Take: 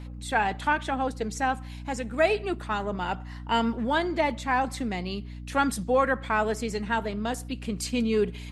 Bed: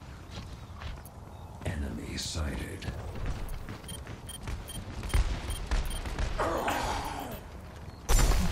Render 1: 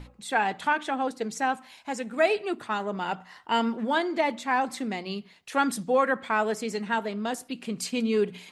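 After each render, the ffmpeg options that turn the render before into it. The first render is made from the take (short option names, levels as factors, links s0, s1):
-af "bandreject=f=60:t=h:w=6,bandreject=f=120:t=h:w=6,bandreject=f=180:t=h:w=6,bandreject=f=240:t=h:w=6,bandreject=f=300:t=h:w=6"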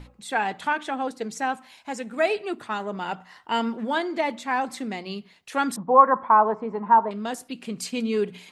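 -filter_complex "[0:a]asettb=1/sr,asplit=3[s0][s1][s2];[s0]atrim=end=5.764[s3];[s1]atrim=start=5.76:end=7.11,asetpts=PTS-STARTPTS,afade=t=in:d=0.004:c=qsin,afade=t=out:st=1.346:d=0.004:c=qsin,lowpass=f=1000:t=q:w=8.4[s4];[s2]atrim=start=7.106[s5];[s3][s4]acrossfade=d=0.004:c1=hsin:c2=qsin[s6];[s6][s5]acrossfade=d=0.004:c1=qsin:c2=hsin"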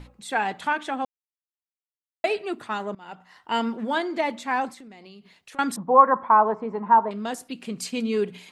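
-filter_complex "[0:a]asettb=1/sr,asplit=3[s0][s1][s2];[s0]atrim=end=4.694[s3];[s1]atrim=start=4.69:end=5.59,asetpts=PTS-STARTPTS,afade=t=in:d=0.004:c=qsin,afade=t=out:st=0.896:d=0.004:c=qsin,acompressor=threshold=0.00794:ratio=10:attack=3.2:release=140:knee=1:detection=peak[s4];[s2]atrim=start=5.586[s5];[s3][s4]acrossfade=d=0.004:c1=hsin:c2=qsin[s6];[s6][s5]acrossfade=d=0.004:c1=qsin:c2=hsin,asplit=4[s7][s8][s9][s10];[s7]atrim=end=1.05,asetpts=PTS-STARTPTS,afade=t=out:st=1.046:d=0.004:c=hsin[s11];[s8]atrim=start=1.05:end=2.24,asetpts=PTS-STARTPTS,volume=0[s12];[s9]atrim=start=2.24:end=2.95,asetpts=PTS-STARTPTS,afade=t=in:d=0.004:c=hsin,afade=t=out:st=0.706:d=0.004:c=hsin:silence=0.0841395[s13];[s10]atrim=start=2.95,asetpts=PTS-STARTPTS,afade=t=in:d=0.61:silence=0.0841395[s14];[s11][s12][s13][s14]concat=n=4:v=0:a=1"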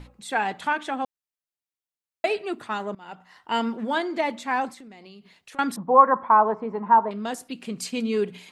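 -filter_complex "[0:a]asettb=1/sr,asplit=3[s0][s1][s2];[s0]atrim=end=5.604[s3];[s1]atrim=start=5.6:end=7.24,asetpts=PTS-STARTPTS,afade=t=in:d=0.004:c=qsin,afade=t=out:st=1.636:d=0.004:c=qsin,equalizer=f=7700:t=o:w=0.77:g=-5.5[s4];[s2]atrim=start=7.236[s5];[s3][s4]acrossfade=d=0.004:c1=hsin:c2=qsin[s6];[s6][s5]acrossfade=d=0.004:c1=qsin:c2=hsin"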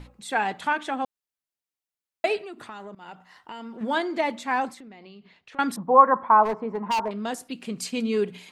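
-filter_complex "[0:a]asettb=1/sr,asplit=3[s0][s1][s2];[s0]atrim=end=2.414[s3];[s1]atrim=start=2.41:end=3.81,asetpts=PTS-STARTPTS,afade=t=in:d=0.004:c=qsin,afade=t=out:st=1.396:d=0.004:c=qsin,acompressor=threshold=0.0158:ratio=6:attack=3.2:release=140:knee=1:detection=peak[s4];[s2]atrim=start=3.806[s5];[s3][s4]acrossfade=d=0.004:c1=hsin:c2=qsin[s6];[s6][s5]acrossfade=d=0.004:c1=qsin:c2=hsin,asettb=1/sr,asplit=3[s7][s8][s9];[s7]atrim=end=4.804[s10];[s8]atrim=start=4.8:end=5.6,asetpts=PTS-STARTPTS,afade=t=in:d=0.004:c=qsin,afade=t=out:st=0.796:d=0.004:c=qsin,lowpass=3700[s11];[s9]atrim=start=5.596[s12];[s10][s11]acrossfade=d=0.004:c1=hsin:c2=qsin[s13];[s13][s12]acrossfade=d=0.004:c1=qsin:c2=hsin,asplit=3[s14][s15][s16];[s14]afade=t=out:st=6.43:d=0.02[s17];[s15]asoftclip=type=hard:threshold=0.0841,afade=t=in:st=6.43:d=0.02,afade=t=out:st=7.1:d=0.02[s18];[s16]afade=t=in:st=7.1:d=0.02[s19];[s17][s18][s19]amix=inputs=3:normalize=0"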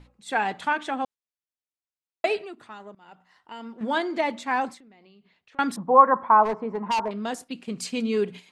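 -af "agate=range=0.398:threshold=0.0112:ratio=16:detection=peak,lowpass=9900"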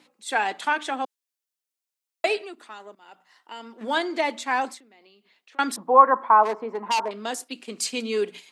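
-af "highpass=f=260:w=0.5412,highpass=f=260:w=1.3066,highshelf=f=3200:g=8.5"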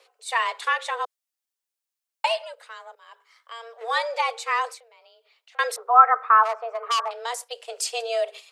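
-af "afreqshift=230"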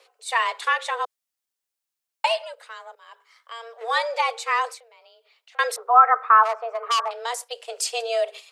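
-af "volume=1.19,alimiter=limit=0.708:level=0:latency=1"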